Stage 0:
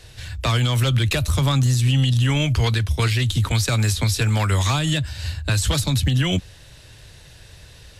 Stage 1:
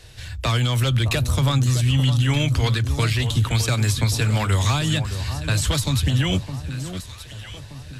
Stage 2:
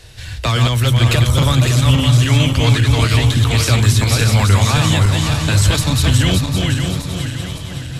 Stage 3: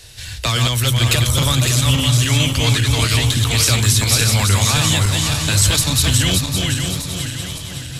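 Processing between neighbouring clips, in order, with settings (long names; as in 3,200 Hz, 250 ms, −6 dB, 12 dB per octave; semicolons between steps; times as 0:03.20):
delay that swaps between a low-pass and a high-pass 612 ms, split 1,100 Hz, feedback 63%, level −9 dB; level −1 dB
feedback delay that plays each chunk backwards 281 ms, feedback 65%, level −3 dB; level +4.5 dB
high-shelf EQ 3,100 Hz +11.5 dB; level −4 dB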